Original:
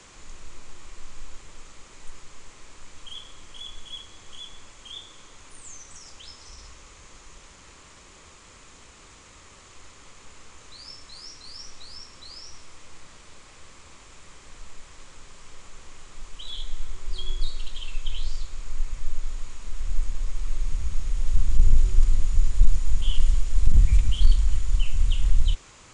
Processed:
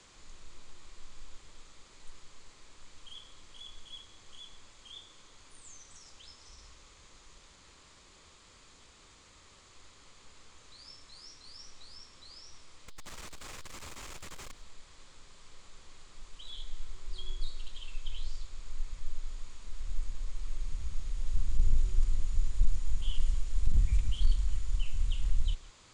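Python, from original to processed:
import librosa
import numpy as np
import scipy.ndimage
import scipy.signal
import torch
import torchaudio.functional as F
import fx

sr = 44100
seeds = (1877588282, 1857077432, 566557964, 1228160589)

y = fx.leveller(x, sr, passes=5, at=(12.88, 14.53))
y = fx.dmg_noise_band(y, sr, seeds[0], low_hz=3100.0, high_hz=5000.0, level_db=-58.0)
y = y + 10.0 ** (-23.0 / 20.0) * np.pad(y, (int(159 * sr / 1000.0), 0))[:len(y)]
y = y * 10.0 ** (-9.0 / 20.0)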